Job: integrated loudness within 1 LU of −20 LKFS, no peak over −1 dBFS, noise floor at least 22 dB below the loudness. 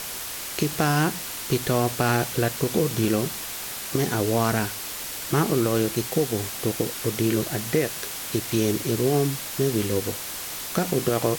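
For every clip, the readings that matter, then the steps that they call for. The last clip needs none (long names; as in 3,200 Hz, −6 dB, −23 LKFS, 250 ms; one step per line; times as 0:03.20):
background noise floor −34 dBFS; target noise floor −47 dBFS; integrated loudness −25.0 LKFS; sample peak −8.0 dBFS; target loudness −20.0 LKFS
→ broadband denoise 13 dB, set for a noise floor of −34 dBFS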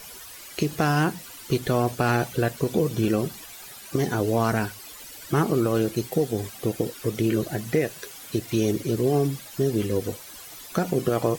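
background noise floor −43 dBFS; target noise floor −48 dBFS
→ broadband denoise 6 dB, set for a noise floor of −43 dBFS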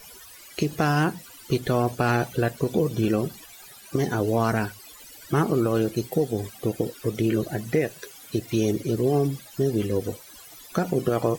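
background noise floor −47 dBFS; target noise floor −48 dBFS
→ broadband denoise 6 dB, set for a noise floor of −47 dBFS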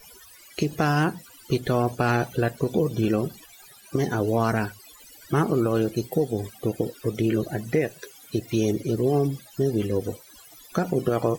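background noise floor −50 dBFS; integrated loudness −25.5 LKFS; sample peak −9.0 dBFS; target loudness −20.0 LKFS
→ level +5.5 dB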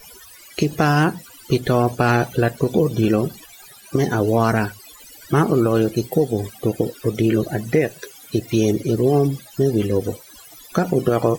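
integrated loudness −20.0 LKFS; sample peak −3.5 dBFS; background noise floor −44 dBFS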